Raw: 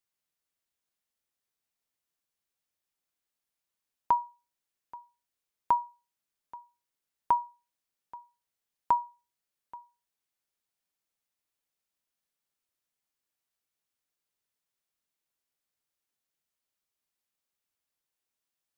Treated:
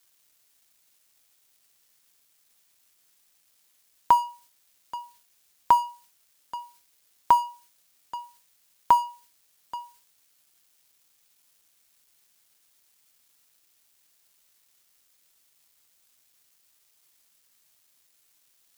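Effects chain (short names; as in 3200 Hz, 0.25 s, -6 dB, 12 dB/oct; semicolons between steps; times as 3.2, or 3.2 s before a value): G.711 law mismatch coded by mu; high shelf 2300 Hz +9 dB; gain +5 dB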